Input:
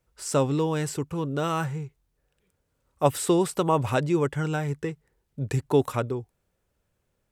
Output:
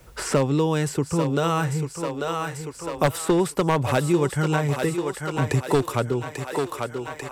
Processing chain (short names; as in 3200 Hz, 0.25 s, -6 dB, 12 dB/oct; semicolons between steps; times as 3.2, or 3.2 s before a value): one-sided fold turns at -15 dBFS; thinning echo 0.842 s, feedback 56%, high-pass 370 Hz, level -9 dB; three-band squash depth 70%; gain +3.5 dB